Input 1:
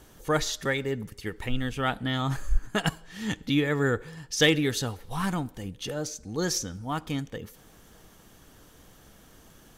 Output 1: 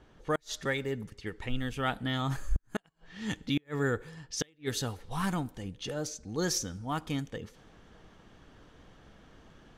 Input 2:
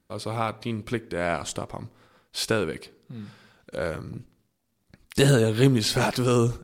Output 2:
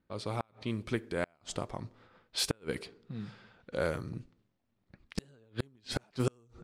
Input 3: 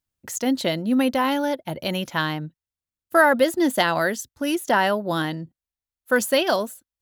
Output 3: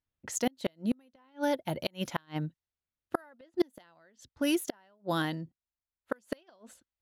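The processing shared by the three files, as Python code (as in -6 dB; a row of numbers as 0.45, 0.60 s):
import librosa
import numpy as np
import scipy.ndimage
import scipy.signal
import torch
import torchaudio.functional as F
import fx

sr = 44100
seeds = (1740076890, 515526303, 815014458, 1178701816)

y = fx.gate_flip(x, sr, shuts_db=-13.0, range_db=-37)
y = fx.rider(y, sr, range_db=4, speed_s=2.0)
y = fx.env_lowpass(y, sr, base_hz=2900.0, full_db=-26.5)
y = y * librosa.db_to_amplitude(-4.0)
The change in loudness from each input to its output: -5.5, -12.5, -12.5 LU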